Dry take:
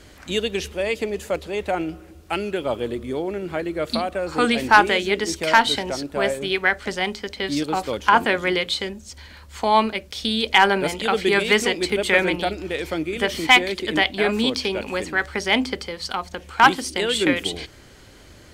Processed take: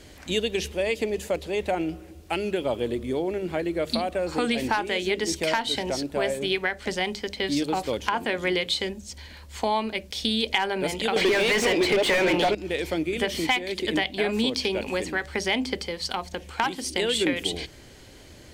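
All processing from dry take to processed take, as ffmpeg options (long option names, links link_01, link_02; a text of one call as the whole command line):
ffmpeg -i in.wav -filter_complex "[0:a]asettb=1/sr,asplit=3[link_01][link_02][link_03];[link_01]atrim=end=11.164[link_04];[link_02]atrim=start=11.16:end=12.55,asetpts=PTS-STARTPTS,afade=type=in:duration=0.004:curve=qsin,afade=type=out:start_time=1.386:duration=0.004:curve=qsin,asplit=2[link_05][link_06];[link_06]highpass=frequency=720:poles=1,volume=31dB,asoftclip=type=tanh:threshold=-2.5dB[link_07];[link_05][link_07]amix=inputs=2:normalize=0,lowpass=frequency=1800:poles=1,volume=-6dB,asoftclip=type=hard:threshold=-6dB[link_08];[link_03]atrim=start=12.546[link_09];[link_04][link_08]acrossfade=duration=0.004:curve1=hsin:curve2=qsin[link_10];[link_10][link_09]acrossfade=duration=0.004:curve1=qsin:curve2=hsin,acompressor=threshold=-20dB:ratio=5,equalizer=frequency=1300:width_type=o:width=0.63:gain=-6.5,bandreject=frequency=50:width_type=h:width=6,bandreject=frequency=100:width_type=h:width=6,bandreject=frequency=150:width_type=h:width=6,bandreject=frequency=200:width_type=h:width=6" out.wav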